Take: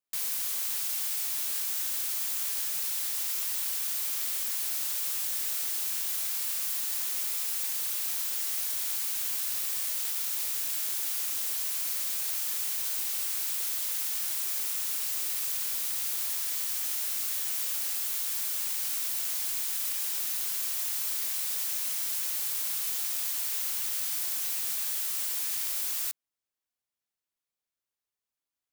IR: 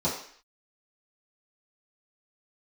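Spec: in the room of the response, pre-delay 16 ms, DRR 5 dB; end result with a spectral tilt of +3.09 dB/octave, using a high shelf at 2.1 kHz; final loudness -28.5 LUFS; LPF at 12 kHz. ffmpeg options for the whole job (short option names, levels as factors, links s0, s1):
-filter_complex "[0:a]lowpass=12000,highshelf=f=2100:g=8.5,asplit=2[s0][s1];[1:a]atrim=start_sample=2205,adelay=16[s2];[s1][s2]afir=irnorm=-1:irlink=0,volume=0.168[s3];[s0][s3]amix=inputs=2:normalize=0,volume=0.668"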